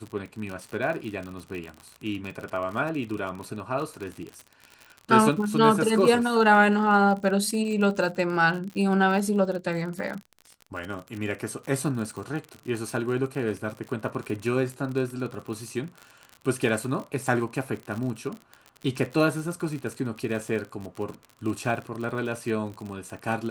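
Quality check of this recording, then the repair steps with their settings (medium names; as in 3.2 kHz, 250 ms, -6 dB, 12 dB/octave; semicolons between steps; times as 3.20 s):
crackle 51 per s -32 dBFS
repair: de-click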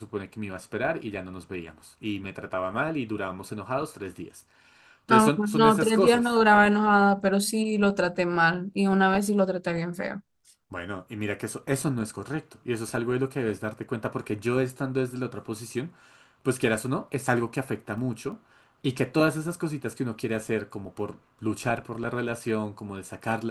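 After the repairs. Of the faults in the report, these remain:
nothing left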